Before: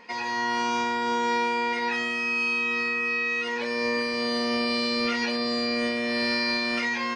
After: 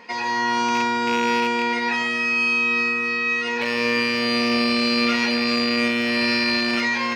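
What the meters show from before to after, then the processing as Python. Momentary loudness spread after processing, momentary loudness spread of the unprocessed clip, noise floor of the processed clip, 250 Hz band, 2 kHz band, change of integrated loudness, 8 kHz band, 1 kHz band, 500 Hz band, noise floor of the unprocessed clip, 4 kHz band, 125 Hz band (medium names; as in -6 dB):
3 LU, 2 LU, -25 dBFS, +6.5 dB, +5.5 dB, +5.5 dB, +5.0 dB, +4.5 dB, +3.0 dB, -30 dBFS, +5.5 dB, +8.0 dB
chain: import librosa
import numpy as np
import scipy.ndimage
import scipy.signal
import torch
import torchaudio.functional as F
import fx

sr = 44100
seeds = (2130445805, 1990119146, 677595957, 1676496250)

y = fx.rattle_buzz(x, sr, strikes_db=-36.0, level_db=-20.0)
y = scipy.signal.sosfilt(scipy.signal.butter(2, 52.0, 'highpass', fs=sr, output='sos'), y)
y = fx.echo_alternate(y, sr, ms=135, hz=1300.0, feedback_pct=58, wet_db=-7.0)
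y = F.gain(torch.from_numpy(y), 4.5).numpy()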